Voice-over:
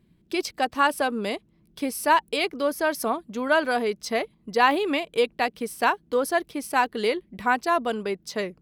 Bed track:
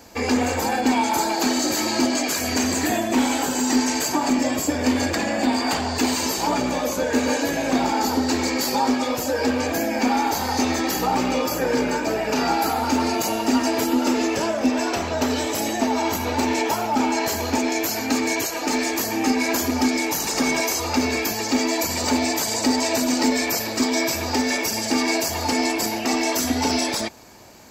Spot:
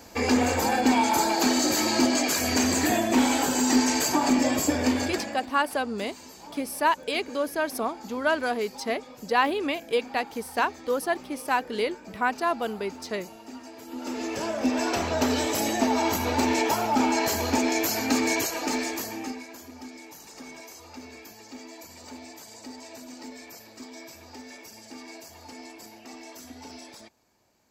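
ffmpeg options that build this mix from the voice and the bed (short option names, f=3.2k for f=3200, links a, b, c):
-filter_complex "[0:a]adelay=4750,volume=-3dB[a];[1:a]volume=19dB,afade=t=out:st=4.72:d=0.75:silence=0.0891251,afade=t=in:st=13.84:d=1.18:silence=0.0944061,afade=t=out:st=18.35:d=1.12:silence=0.1[b];[a][b]amix=inputs=2:normalize=0"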